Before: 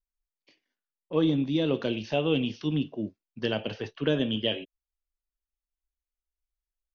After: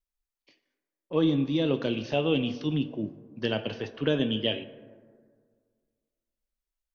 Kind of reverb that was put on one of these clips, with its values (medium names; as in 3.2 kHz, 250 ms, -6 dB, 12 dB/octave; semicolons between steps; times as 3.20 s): plate-style reverb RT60 1.9 s, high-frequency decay 0.35×, DRR 12.5 dB